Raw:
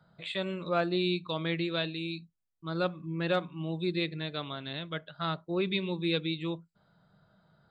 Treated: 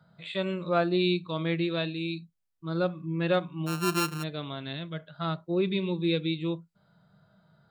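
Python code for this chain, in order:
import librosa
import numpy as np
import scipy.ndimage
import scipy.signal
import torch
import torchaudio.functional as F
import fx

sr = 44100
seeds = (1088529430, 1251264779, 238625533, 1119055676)

y = fx.sample_sort(x, sr, block=32, at=(3.66, 4.22), fade=0.02)
y = fx.hpss(y, sr, part='percussive', gain_db=-10)
y = y * 10.0 ** (4.0 / 20.0)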